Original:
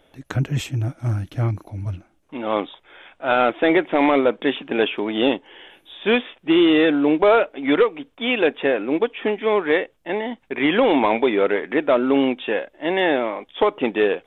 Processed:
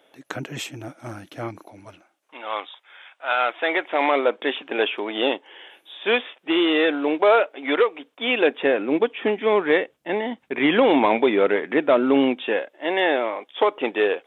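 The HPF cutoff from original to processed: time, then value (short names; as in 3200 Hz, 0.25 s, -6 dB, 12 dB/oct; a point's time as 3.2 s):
1.62 s 320 Hz
2.5 s 950 Hz
3.34 s 950 Hz
4.31 s 420 Hz
7.97 s 420 Hz
9.05 s 120 Hz
12.23 s 120 Hz
12.76 s 370 Hz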